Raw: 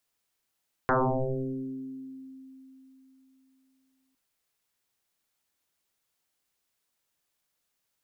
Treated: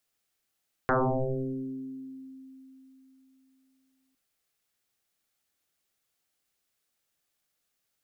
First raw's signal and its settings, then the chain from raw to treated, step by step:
two-operator FM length 3.26 s, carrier 264 Hz, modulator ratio 0.49, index 11, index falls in 1.72 s exponential, decay 3.68 s, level −20 dB
notch filter 970 Hz, Q 7.3

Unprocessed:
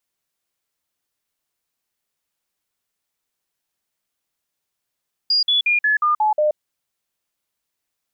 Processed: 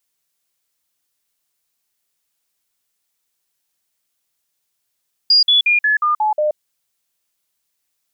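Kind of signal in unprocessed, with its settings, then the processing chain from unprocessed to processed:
stepped sweep 4,840 Hz down, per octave 2, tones 7, 0.13 s, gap 0.05 s −14 dBFS
high-shelf EQ 2,900 Hz +8 dB

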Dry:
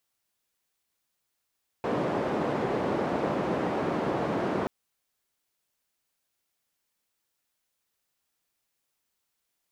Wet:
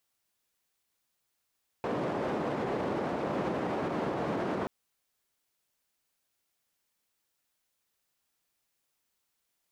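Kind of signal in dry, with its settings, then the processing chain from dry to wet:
band-limited noise 170–600 Hz, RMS −28.5 dBFS 2.83 s
brickwall limiter −24 dBFS

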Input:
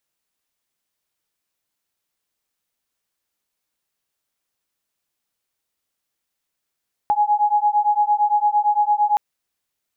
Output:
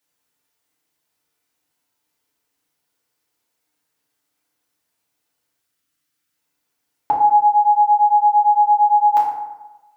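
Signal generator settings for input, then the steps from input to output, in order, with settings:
two tones that beat 830 Hz, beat 8.8 Hz, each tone −18 dBFS 2.07 s
gain on a spectral selection 0:05.59–0:06.36, 320–1,100 Hz −8 dB
high-pass filter 83 Hz
feedback delay network reverb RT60 1.1 s, low-frequency decay 1×, high-frequency decay 0.5×, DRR −5 dB

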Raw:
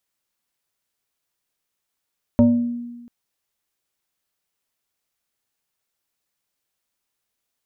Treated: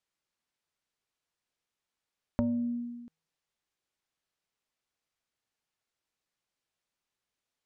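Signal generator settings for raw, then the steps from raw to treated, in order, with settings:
two-operator FM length 0.69 s, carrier 239 Hz, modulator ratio 1.44, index 0.84, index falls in 0.69 s exponential, decay 1.27 s, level −8.5 dB
downward compressor, threshold −23 dBFS
high-frequency loss of the air 57 metres
tuned comb filter 160 Hz, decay 0.84 s, harmonics odd, mix 40%

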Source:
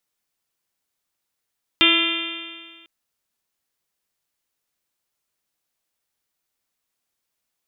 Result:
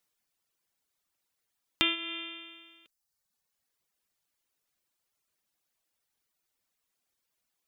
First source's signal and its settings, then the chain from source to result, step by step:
stiff-string partials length 1.05 s, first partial 330 Hz, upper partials −13.5/−11.5/−4/−10/−4/1/2.5/4/3 dB, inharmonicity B 0.0017, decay 1.71 s, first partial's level −20 dB
reverb reduction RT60 1 s
downward compressor 3 to 1, threshold −28 dBFS

